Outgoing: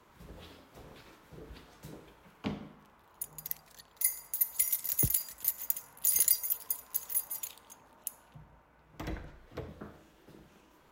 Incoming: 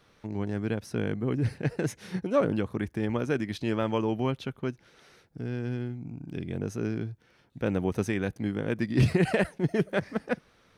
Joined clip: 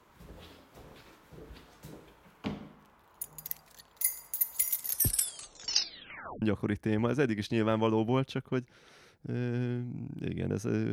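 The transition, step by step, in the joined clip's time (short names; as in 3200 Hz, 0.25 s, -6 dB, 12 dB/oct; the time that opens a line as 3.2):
outgoing
4.81 tape stop 1.61 s
6.42 switch to incoming from 2.53 s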